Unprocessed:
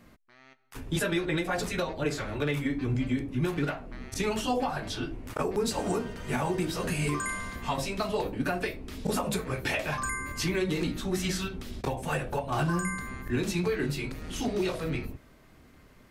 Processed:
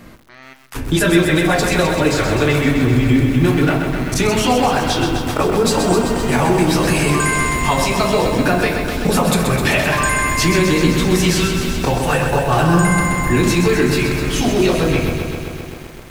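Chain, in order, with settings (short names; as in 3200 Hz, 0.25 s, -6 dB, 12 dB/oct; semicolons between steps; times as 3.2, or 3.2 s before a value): in parallel at +1.5 dB: limiter -26.5 dBFS, peak gain reduction 7.5 dB; on the sum: reverb RT60 0.95 s, pre-delay 3 ms, DRR 11.5 dB; lo-fi delay 0.129 s, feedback 80%, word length 8-bit, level -6.5 dB; gain +8.5 dB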